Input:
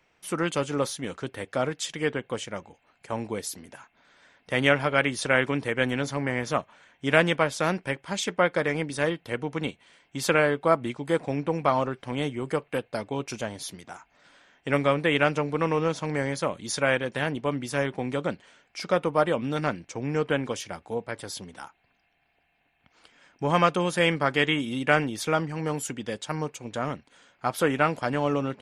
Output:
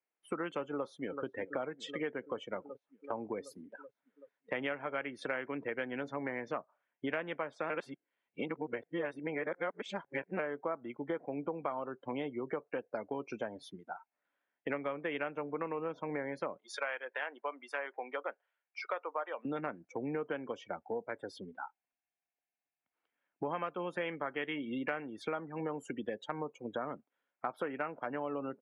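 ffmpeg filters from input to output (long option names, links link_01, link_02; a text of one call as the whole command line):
ffmpeg -i in.wav -filter_complex "[0:a]asplit=2[link_01][link_02];[link_02]afade=type=in:start_time=0.74:duration=0.01,afade=type=out:start_time=1.24:duration=0.01,aecho=0:1:380|760|1140|1520|1900|2280|2660|3040|3420|3800|4180|4560:0.177828|0.151154|0.128481|0.109209|0.0928273|0.0789032|0.0670677|0.0570076|0.0484564|0.041188|0.0350098|0.0297583[link_03];[link_01][link_03]amix=inputs=2:normalize=0,asettb=1/sr,asplit=3[link_04][link_05][link_06];[link_04]atrim=end=16.584[link_07];[link_05]atrim=start=16.58:end=19.45,asetpts=PTS-STARTPTS,afade=type=in:duration=0.004:curve=qsin,afade=type=out:start_time=2.866:duration=0.004:curve=qsin,highpass=720[link_08];[link_06]atrim=start=19.446[link_09];[link_07][link_08]acrossfade=duration=0.004:curve1=hsin:curve2=qsin[link_10];[link_10][link_09]acrossfade=duration=0.004:curve1=qsin:curve2=hsin,asplit=3[link_11][link_12][link_13];[link_11]atrim=end=7.702[link_14];[link_12]atrim=start=7.698:end=10.392,asetpts=PTS-STARTPTS,areverse[link_15];[link_13]atrim=start=10.388[link_16];[link_14][link_15]acrossfade=duration=0.004:curve1=hsin:curve2=hsin[link_17];[link_17][link_16]acrossfade=duration=0.004:curve1=hsin:curve2=hsin,afftdn=noise_reduction=28:noise_floor=-37,acrossover=split=220 2900:gain=0.158 1 0.0891[link_18][link_19][link_20];[link_18][link_19][link_20]amix=inputs=3:normalize=0,acompressor=threshold=-36dB:ratio=6,volume=1.5dB" out.wav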